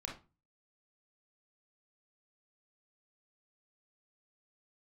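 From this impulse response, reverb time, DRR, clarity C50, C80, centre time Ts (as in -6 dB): 0.30 s, -1.0 dB, 6.5 dB, 15.0 dB, 26 ms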